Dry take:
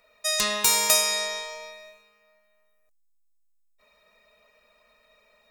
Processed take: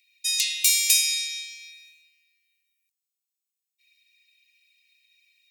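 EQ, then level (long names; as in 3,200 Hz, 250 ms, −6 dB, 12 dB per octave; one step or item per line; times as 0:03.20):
Butterworth high-pass 2,100 Hz 96 dB per octave
+1.5 dB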